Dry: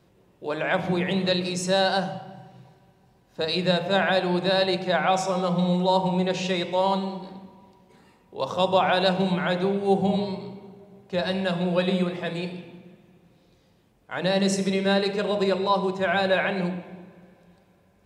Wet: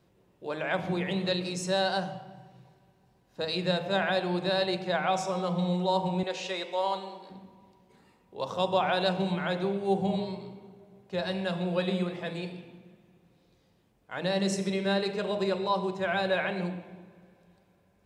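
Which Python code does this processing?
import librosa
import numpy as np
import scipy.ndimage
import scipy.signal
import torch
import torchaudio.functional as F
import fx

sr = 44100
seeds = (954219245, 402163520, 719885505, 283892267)

y = fx.highpass(x, sr, hz=410.0, slope=12, at=(6.23, 7.3))
y = y * librosa.db_to_amplitude(-5.5)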